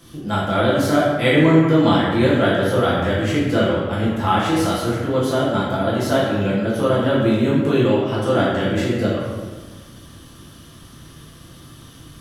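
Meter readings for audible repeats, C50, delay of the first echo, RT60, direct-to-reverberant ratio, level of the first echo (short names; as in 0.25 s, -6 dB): none, -0.5 dB, none, 1.4 s, -8.5 dB, none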